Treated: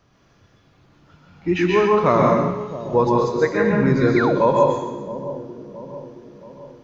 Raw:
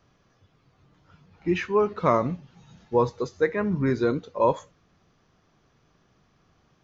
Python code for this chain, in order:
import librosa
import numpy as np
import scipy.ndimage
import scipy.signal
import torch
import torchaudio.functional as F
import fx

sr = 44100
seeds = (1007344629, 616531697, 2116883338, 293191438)

y = fx.echo_split(x, sr, split_hz=850.0, low_ms=671, high_ms=132, feedback_pct=52, wet_db=-13.0)
y = fx.rev_plate(y, sr, seeds[0], rt60_s=0.8, hf_ratio=1.0, predelay_ms=110, drr_db=-2.0)
y = fx.spec_paint(y, sr, seeds[1], shape='fall', start_s=4.16, length_s=0.24, low_hz=280.0, high_hz=2400.0, level_db=-27.0)
y = y * 10.0 ** (3.5 / 20.0)